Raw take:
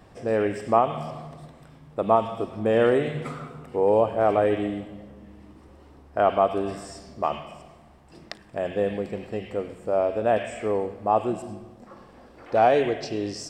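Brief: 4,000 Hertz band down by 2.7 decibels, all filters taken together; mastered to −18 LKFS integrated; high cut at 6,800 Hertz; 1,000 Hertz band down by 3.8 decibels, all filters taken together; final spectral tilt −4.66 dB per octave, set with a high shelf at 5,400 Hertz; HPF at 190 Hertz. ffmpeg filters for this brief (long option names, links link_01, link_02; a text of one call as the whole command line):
ffmpeg -i in.wav -af "highpass=190,lowpass=6800,equalizer=frequency=1000:width_type=o:gain=-6,equalizer=frequency=4000:width_type=o:gain=-5.5,highshelf=frequency=5400:gain=5.5,volume=8.5dB" out.wav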